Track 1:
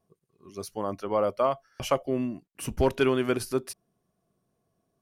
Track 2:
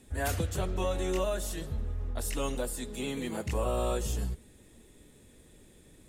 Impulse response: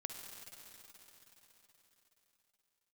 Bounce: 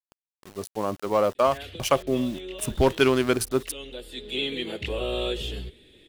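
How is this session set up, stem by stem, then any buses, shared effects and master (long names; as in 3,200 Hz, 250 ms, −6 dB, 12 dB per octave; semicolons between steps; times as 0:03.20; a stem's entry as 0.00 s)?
+3.0 dB, 0.00 s, no send, adaptive Wiener filter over 15 samples; centre clipping without the shift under −47 dBFS
−3.0 dB, 1.35 s, no send, drawn EQ curve 220 Hz 0 dB, 380 Hz +10 dB, 1,000 Hz −5 dB, 3,400 Hz +13 dB, 6,300 Hz −15 dB; automatic ducking −12 dB, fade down 1.90 s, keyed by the first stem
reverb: not used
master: high-shelf EQ 2,600 Hz +10 dB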